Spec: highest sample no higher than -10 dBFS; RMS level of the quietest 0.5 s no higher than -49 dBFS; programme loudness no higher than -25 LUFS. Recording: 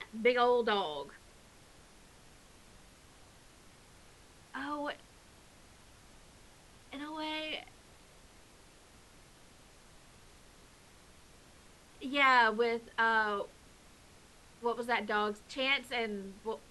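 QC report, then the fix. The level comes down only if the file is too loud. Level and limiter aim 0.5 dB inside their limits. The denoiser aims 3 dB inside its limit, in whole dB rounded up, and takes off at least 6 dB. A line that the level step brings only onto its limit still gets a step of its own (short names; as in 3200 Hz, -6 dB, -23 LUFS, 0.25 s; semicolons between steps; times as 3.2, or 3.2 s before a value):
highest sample -14.0 dBFS: OK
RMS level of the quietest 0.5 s -59 dBFS: OK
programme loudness -32.0 LUFS: OK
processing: none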